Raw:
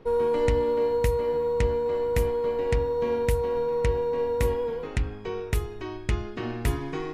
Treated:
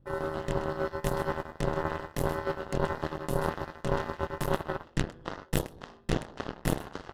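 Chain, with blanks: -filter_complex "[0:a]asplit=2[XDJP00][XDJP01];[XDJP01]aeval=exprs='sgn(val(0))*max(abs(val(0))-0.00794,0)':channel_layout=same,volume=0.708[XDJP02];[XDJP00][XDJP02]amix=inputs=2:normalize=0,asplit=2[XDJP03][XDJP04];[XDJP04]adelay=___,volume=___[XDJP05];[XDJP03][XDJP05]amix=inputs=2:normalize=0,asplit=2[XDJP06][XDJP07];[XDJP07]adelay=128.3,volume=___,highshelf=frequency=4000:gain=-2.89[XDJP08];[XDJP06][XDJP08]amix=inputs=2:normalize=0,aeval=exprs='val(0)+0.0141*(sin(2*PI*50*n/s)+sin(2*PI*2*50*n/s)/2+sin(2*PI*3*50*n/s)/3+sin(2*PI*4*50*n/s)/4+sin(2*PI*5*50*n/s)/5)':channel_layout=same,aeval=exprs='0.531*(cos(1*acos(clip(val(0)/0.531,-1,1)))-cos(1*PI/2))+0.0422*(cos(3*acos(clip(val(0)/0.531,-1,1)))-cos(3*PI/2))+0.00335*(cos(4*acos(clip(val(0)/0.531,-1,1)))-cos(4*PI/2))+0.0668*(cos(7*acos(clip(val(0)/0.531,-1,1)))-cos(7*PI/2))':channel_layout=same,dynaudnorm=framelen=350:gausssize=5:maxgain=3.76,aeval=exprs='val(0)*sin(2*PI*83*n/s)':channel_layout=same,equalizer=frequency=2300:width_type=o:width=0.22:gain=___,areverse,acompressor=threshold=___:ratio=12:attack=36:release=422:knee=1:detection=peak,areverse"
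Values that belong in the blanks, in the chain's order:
26, 0.668, 0.282, -12.5, 0.0398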